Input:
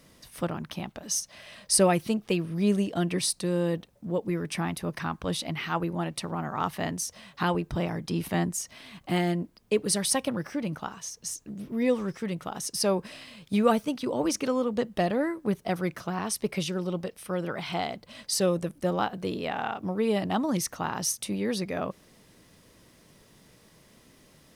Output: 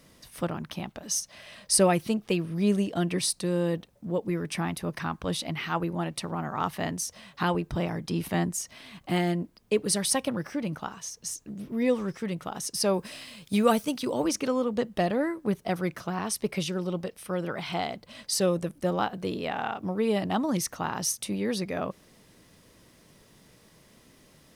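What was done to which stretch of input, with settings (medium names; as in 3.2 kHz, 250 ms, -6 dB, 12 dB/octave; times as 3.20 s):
12.93–14.23 s: treble shelf 5.6 kHz -> 3.9 kHz +9 dB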